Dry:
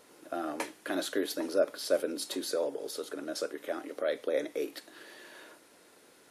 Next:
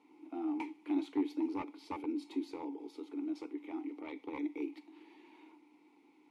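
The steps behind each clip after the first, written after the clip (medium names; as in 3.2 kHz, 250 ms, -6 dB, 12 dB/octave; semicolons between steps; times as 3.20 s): one-sided wavefolder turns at -25 dBFS; vowel filter u; trim +6.5 dB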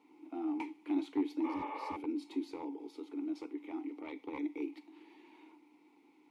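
spectral replace 1.47–1.91 s, 370–3700 Hz after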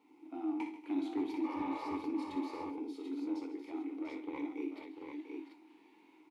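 doubling 22 ms -11 dB; multi-tap echo 60/137/157/237/695/739 ms -8/-15/-17.5/-18/-10/-5.5 dB; trim -2 dB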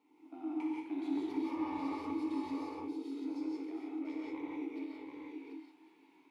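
gated-style reverb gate 200 ms rising, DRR -2.5 dB; trim -5.5 dB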